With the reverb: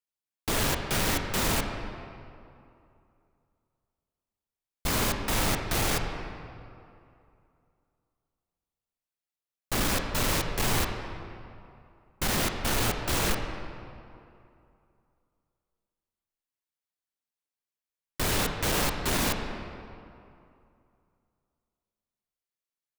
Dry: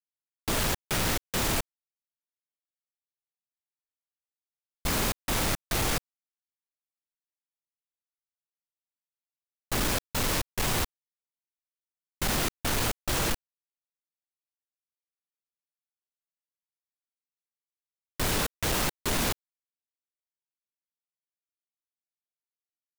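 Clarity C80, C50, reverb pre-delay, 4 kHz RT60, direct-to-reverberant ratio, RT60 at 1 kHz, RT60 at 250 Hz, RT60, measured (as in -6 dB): 6.0 dB, 5.0 dB, 19 ms, 1.6 s, 3.5 dB, 2.6 s, 2.6 s, 2.6 s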